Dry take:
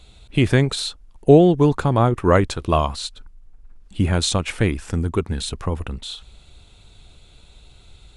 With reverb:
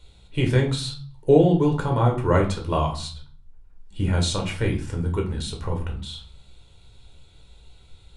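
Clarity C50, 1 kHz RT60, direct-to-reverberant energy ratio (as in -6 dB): 10.0 dB, 0.50 s, 1.0 dB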